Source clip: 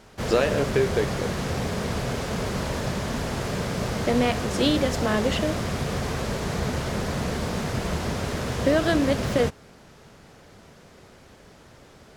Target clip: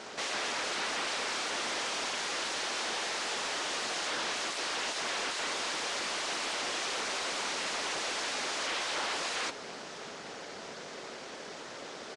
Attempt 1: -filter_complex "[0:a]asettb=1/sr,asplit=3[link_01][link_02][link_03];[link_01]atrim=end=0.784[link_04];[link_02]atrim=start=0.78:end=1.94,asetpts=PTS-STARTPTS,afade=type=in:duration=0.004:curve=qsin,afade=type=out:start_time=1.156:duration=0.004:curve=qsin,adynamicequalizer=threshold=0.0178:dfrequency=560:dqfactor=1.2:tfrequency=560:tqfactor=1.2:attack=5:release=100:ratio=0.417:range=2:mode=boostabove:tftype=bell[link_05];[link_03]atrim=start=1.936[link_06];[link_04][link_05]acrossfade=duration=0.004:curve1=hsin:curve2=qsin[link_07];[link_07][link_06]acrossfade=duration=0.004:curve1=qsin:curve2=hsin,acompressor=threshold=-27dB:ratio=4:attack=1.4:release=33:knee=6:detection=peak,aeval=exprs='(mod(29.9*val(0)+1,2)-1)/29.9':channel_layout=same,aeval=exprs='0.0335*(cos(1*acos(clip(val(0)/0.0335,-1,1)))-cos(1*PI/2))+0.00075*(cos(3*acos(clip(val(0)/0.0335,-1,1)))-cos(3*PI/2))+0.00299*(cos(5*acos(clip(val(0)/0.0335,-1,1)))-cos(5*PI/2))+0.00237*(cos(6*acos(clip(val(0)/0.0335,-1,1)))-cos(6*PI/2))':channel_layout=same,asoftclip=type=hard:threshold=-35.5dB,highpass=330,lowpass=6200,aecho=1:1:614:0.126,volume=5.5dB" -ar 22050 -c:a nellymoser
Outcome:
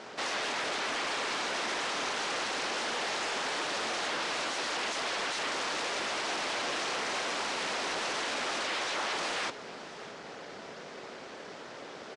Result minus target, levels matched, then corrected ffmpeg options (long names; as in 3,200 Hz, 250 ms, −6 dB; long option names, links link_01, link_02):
8,000 Hz band −4.0 dB
-filter_complex "[0:a]asettb=1/sr,asplit=3[link_01][link_02][link_03];[link_01]atrim=end=0.784[link_04];[link_02]atrim=start=0.78:end=1.94,asetpts=PTS-STARTPTS,afade=type=in:duration=0.004:curve=qsin,afade=type=out:start_time=1.156:duration=0.004:curve=qsin,adynamicequalizer=threshold=0.0178:dfrequency=560:dqfactor=1.2:tfrequency=560:tqfactor=1.2:attack=5:release=100:ratio=0.417:range=2:mode=boostabove:tftype=bell[link_05];[link_03]atrim=start=1.936[link_06];[link_04][link_05]acrossfade=duration=0.004:curve1=hsin:curve2=qsin[link_07];[link_07][link_06]acrossfade=duration=0.004:curve1=qsin:curve2=hsin,acompressor=threshold=-27dB:ratio=4:attack=1.4:release=33:knee=6:detection=peak,highshelf=frequency=4700:gain=9.5,aeval=exprs='(mod(29.9*val(0)+1,2)-1)/29.9':channel_layout=same,aeval=exprs='0.0335*(cos(1*acos(clip(val(0)/0.0335,-1,1)))-cos(1*PI/2))+0.00075*(cos(3*acos(clip(val(0)/0.0335,-1,1)))-cos(3*PI/2))+0.00299*(cos(5*acos(clip(val(0)/0.0335,-1,1)))-cos(5*PI/2))+0.00237*(cos(6*acos(clip(val(0)/0.0335,-1,1)))-cos(6*PI/2))':channel_layout=same,asoftclip=type=hard:threshold=-35.5dB,highpass=330,lowpass=6200,aecho=1:1:614:0.126,volume=5.5dB" -ar 22050 -c:a nellymoser